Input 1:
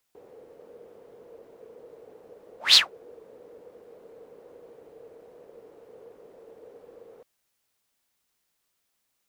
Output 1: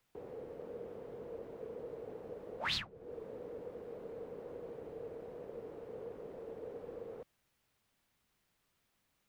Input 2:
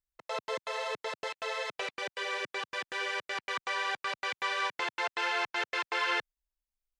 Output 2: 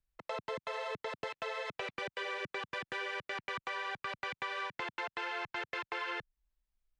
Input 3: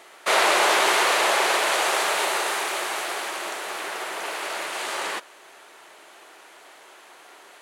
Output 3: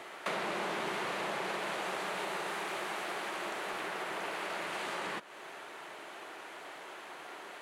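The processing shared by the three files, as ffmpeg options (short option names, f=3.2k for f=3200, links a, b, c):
-filter_complex "[0:a]bass=f=250:g=8,treble=f=4k:g=-8,acrossover=split=210[a][b];[b]acompressor=threshold=-38dB:ratio=6[c];[a][c]amix=inputs=2:normalize=0,volume=2dB"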